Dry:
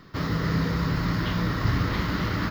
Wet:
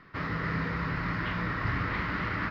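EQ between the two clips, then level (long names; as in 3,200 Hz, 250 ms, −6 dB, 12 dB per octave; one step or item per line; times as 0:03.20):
high-frequency loss of the air 220 metres
tilt shelving filter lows −8 dB, about 1,200 Hz
flat-topped bell 5,000 Hz −10.5 dB
0.0 dB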